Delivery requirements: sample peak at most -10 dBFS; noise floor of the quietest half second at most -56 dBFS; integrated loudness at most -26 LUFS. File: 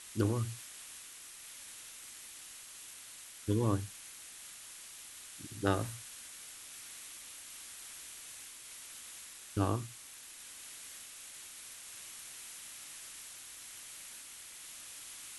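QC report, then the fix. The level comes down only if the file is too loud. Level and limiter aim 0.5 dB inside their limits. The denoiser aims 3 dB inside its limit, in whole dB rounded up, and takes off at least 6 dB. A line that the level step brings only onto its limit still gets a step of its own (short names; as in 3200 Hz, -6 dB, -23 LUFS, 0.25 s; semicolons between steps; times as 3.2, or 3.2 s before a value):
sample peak -13.5 dBFS: OK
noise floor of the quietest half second -51 dBFS: fail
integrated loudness -41.5 LUFS: OK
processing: denoiser 8 dB, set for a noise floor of -51 dBFS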